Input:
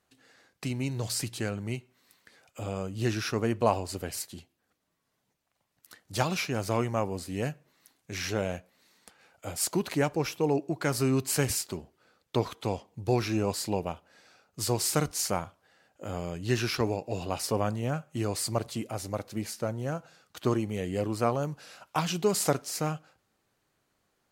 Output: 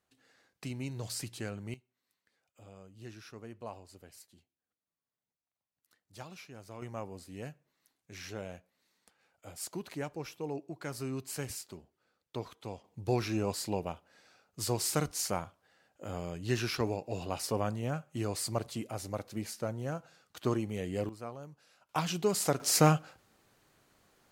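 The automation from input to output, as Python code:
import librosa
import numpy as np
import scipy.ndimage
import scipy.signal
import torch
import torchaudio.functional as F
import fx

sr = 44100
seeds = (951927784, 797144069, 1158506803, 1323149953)

y = fx.gain(x, sr, db=fx.steps((0.0, -7.0), (1.74, -19.0), (6.82, -11.5), (12.84, -4.0), (21.09, -16.0), (21.89, -3.5), (22.6, 7.5)))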